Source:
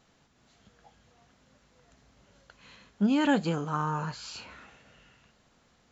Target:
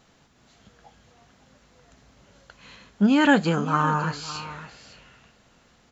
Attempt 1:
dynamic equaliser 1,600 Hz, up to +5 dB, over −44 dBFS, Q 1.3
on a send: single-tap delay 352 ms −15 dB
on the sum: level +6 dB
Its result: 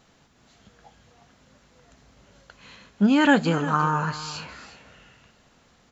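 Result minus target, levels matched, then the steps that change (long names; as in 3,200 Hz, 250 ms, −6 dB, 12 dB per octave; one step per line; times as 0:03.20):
echo 205 ms early
change: single-tap delay 557 ms −15 dB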